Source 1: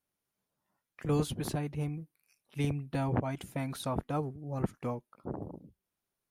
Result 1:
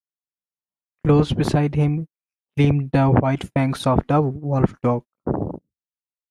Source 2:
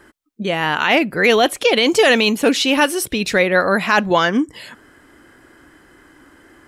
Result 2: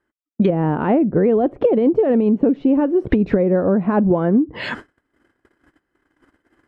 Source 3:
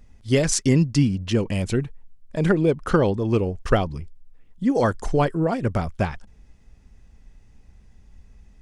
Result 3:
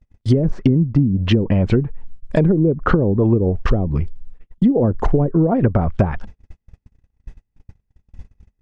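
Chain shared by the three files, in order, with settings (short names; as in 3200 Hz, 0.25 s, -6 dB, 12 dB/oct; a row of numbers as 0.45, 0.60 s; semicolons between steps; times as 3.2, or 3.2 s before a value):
treble ducked by the level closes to 390 Hz, closed at -16 dBFS; gate -43 dBFS, range -39 dB; high shelf 4300 Hz -9 dB; compressor 12:1, threshold -26 dBFS; normalise peaks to -3 dBFS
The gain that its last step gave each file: +16.0, +14.0, +15.0 dB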